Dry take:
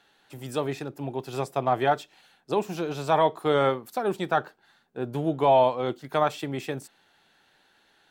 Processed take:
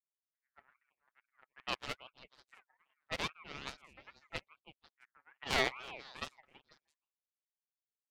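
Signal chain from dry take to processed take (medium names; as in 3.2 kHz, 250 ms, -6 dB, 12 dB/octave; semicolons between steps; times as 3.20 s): comb filter that takes the minimum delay 7.9 ms; power-law waveshaper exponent 3; peaking EQ 220 Hz -10.5 dB 2.6 oct; level-controlled noise filter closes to 400 Hz, open at -36 dBFS; repeats whose band climbs or falls 164 ms, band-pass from 410 Hz, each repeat 1.4 oct, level -10.5 dB; ring modulator with a swept carrier 1.6 kHz, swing 20%, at 2.4 Hz; trim +1.5 dB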